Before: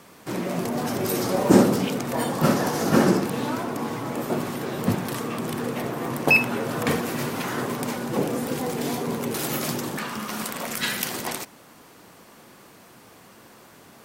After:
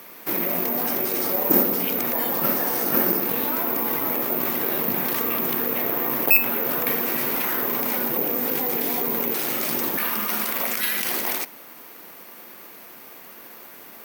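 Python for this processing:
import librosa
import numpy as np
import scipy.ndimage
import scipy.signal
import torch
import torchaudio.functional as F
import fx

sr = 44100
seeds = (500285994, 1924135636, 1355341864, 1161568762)

p1 = scipy.signal.sosfilt(scipy.signal.butter(2, 250.0, 'highpass', fs=sr, output='sos'), x)
p2 = fx.peak_eq(p1, sr, hz=2200.0, db=4.5, octaves=0.67)
p3 = fx.over_compress(p2, sr, threshold_db=-31.0, ratio=-1.0)
p4 = p2 + (p3 * librosa.db_to_amplitude(1.5))
p5 = (np.kron(scipy.signal.resample_poly(p4, 1, 3), np.eye(3)[0]) * 3)[:len(p4)]
y = p5 * librosa.db_to_amplitude(-6.5)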